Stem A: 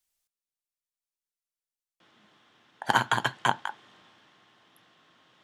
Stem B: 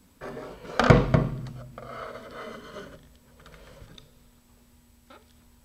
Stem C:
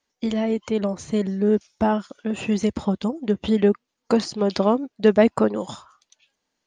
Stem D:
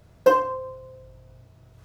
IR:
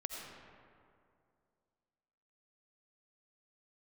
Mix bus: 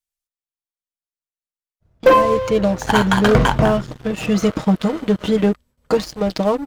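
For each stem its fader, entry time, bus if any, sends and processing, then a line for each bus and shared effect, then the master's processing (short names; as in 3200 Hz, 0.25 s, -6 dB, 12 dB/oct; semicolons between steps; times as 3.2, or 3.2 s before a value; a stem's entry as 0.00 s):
-3.0 dB, 0.00 s, no send, dry
-12.0 dB, 2.45 s, no send, gate with hold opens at -47 dBFS; AGC gain up to 6 dB
-15.5 dB, 1.80 s, no send, comb 6.4 ms, depth 69%; AGC gain up to 11.5 dB
+0.5 dB, 1.80 s, no send, expander -48 dBFS; high shelf 2100 Hz -8 dB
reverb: off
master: low shelf 94 Hz +9 dB; sample leveller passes 3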